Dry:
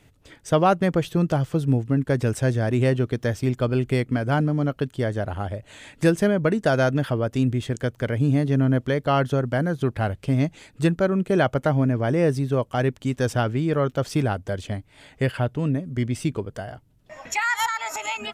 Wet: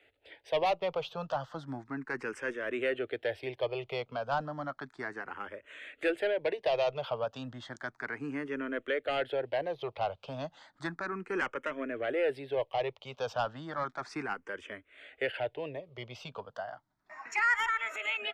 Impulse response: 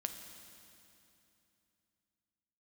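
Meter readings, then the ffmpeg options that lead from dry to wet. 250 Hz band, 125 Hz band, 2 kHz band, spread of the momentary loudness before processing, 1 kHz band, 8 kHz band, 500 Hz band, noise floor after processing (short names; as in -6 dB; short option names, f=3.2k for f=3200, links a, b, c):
-18.5 dB, -25.5 dB, -4.5 dB, 8 LU, -7.5 dB, under -15 dB, -9.0 dB, -73 dBFS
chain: -filter_complex "[0:a]acrossover=split=430 4000:gain=0.0708 1 0.0794[a][b][c];[a][b][c]amix=inputs=3:normalize=0,acrossover=split=100|2100[d][e][f];[e]asoftclip=type=tanh:threshold=-23dB[g];[d][g][f]amix=inputs=3:normalize=0,asplit=2[h][i];[i]afreqshift=0.33[j];[h][j]amix=inputs=2:normalize=1"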